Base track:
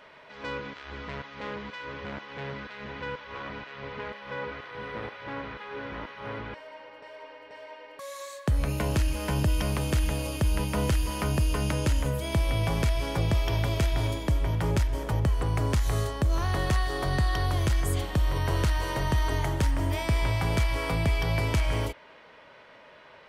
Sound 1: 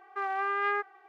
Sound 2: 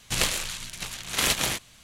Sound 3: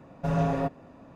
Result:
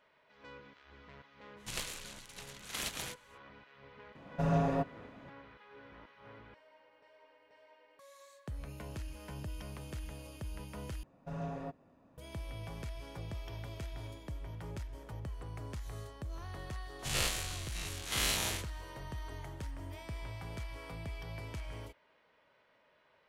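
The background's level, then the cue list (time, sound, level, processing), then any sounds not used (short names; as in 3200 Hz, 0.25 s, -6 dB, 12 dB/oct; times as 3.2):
base track -17.5 dB
1.56 add 2 -15 dB, fades 0.05 s
4.15 add 3 -4 dB
11.03 replace with 3 -14.5 dB
16.99 add 2 -14 dB + spectral dilation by 0.12 s
not used: 1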